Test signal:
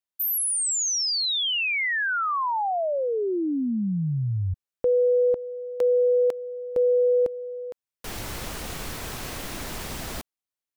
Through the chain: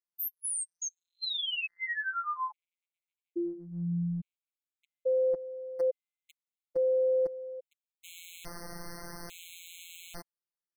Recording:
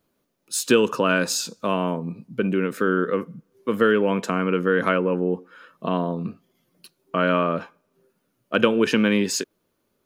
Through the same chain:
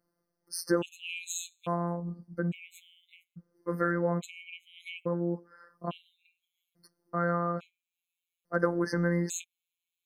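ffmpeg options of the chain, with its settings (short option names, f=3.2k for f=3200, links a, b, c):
-af "afftfilt=real='hypot(re,im)*cos(PI*b)':imag='0':win_size=1024:overlap=0.75,afftfilt=real='re*gt(sin(2*PI*0.59*pts/sr)*(1-2*mod(floor(b*sr/1024/2100),2)),0)':imag='im*gt(sin(2*PI*0.59*pts/sr)*(1-2*mod(floor(b*sr/1024/2100),2)),0)':win_size=1024:overlap=0.75,volume=-4.5dB"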